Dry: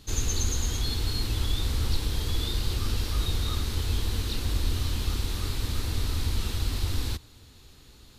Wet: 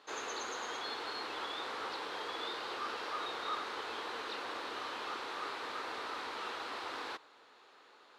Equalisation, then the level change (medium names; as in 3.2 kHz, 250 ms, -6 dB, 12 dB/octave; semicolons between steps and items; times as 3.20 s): Butterworth band-pass 770 Hz, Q 0.78; tilt EQ +4.5 dB/octave; +5.5 dB